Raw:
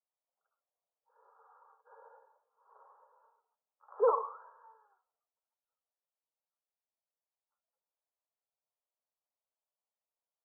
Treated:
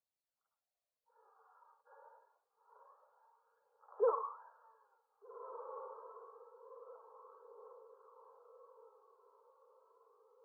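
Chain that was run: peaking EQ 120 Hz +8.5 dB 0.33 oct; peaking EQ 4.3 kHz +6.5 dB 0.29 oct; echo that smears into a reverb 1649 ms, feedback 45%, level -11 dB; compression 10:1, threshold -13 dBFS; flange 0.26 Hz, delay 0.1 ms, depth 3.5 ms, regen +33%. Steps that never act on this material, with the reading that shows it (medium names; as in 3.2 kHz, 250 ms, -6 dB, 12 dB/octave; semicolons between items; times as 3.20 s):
peaking EQ 120 Hz: input has nothing below 360 Hz; peaking EQ 4.3 kHz: input has nothing above 1.4 kHz; compression, threshold -13 dBFS: peak at its input -17.0 dBFS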